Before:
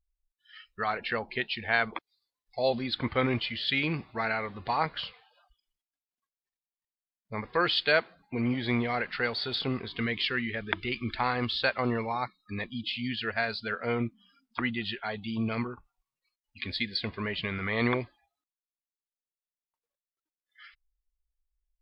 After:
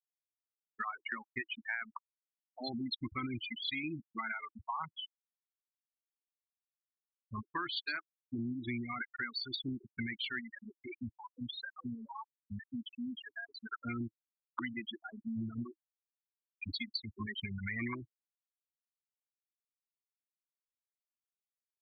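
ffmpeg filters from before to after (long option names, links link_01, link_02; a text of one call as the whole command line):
ffmpeg -i in.wav -filter_complex "[0:a]asplit=3[link_01][link_02][link_03];[link_01]afade=type=out:start_time=10.4:duration=0.02[link_04];[link_02]acompressor=threshold=-33dB:ratio=5:attack=3.2:release=140:knee=1:detection=peak,afade=type=in:start_time=10.4:duration=0.02,afade=type=out:start_time=13.73:duration=0.02[link_05];[link_03]afade=type=in:start_time=13.73:duration=0.02[link_06];[link_04][link_05][link_06]amix=inputs=3:normalize=0,asettb=1/sr,asplit=3[link_07][link_08][link_09];[link_07]atrim=end=14.874[link_10];[link_08]atrim=start=14.87:end=17.28,asetpts=PTS-STARTPTS,afade=type=in:duration=0.004:curve=qsin,afade=type=out:start_time=2.406:duration=0.004:curve=qsin,acrossover=split=480|3000[link_11][link_12][link_13];[link_12]acompressor=threshold=-34dB:ratio=2.5:attack=3.2:release=140:knee=2.83:detection=peak[link_14];[link_11][link_14][link_13]amix=inputs=3:normalize=0[link_15];[link_09]atrim=start=17.276[link_16];[link_10][link_15]acrossfade=duration=0.004:curve1=hsin:curve2=qsin[link_17];[link_17][link_16]acrossfade=duration=0.004:curve1=qsin:curve2=hsin,afftfilt=real='re*gte(hypot(re,im),0.0891)':imag='im*gte(hypot(re,im),0.0891)':win_size=1024:overlap=0.75,firequalizer=gain_entry='entry(110,0);entry(170,-5);entry(320,7);entry(470,-27);entry(1000,3);entry(3200,1);entry(5300,8)':delay=0.05:min_phase=1,acompressor=threshold=-36dB:ratio=6" out.wav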